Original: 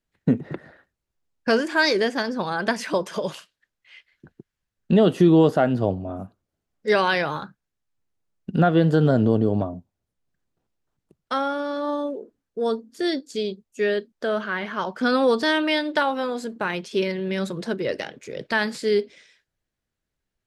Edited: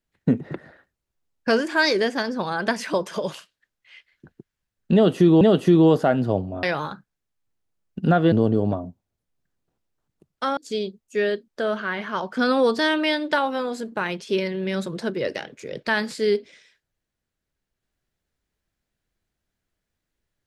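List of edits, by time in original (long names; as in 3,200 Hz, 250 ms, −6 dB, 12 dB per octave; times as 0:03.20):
0:04.94–0:05.41: repeat, 2 plays
0:06.16–0:07.14: remove
0:08.83–0:09.21: remove
0:11.46–0:13.21: remove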